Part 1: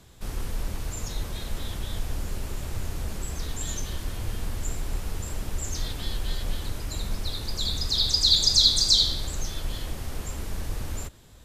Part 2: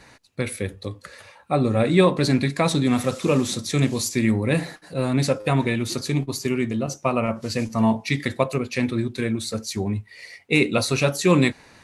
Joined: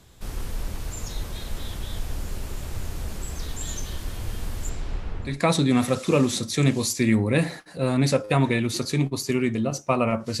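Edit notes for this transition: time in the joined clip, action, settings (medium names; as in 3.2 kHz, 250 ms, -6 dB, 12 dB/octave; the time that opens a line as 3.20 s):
part 1
4.69–5.40 s: low-pass 7 kHz -> 1.3 kHz
5.31 s: go over to part 2 from 2.47 s, crossfade 0.18 s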